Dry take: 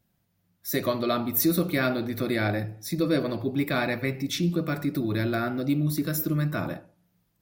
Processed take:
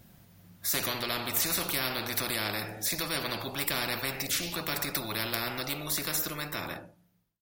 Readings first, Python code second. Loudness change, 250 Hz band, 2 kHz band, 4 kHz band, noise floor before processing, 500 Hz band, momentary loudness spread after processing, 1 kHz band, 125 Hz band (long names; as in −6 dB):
−3.5 dB, −13.5 dB, −1.0 dB, +4.5 dB, −73 dBFS, −9.5 dB, 6 LU, −2.5 dB, −12.5 dB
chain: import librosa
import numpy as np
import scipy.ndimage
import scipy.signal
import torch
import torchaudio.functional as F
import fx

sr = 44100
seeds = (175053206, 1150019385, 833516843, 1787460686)

y = fx.fade_out_tail(x, sr, length_s=1.94)
y = fx.spectral_comp(y, sr, ratio=4.0)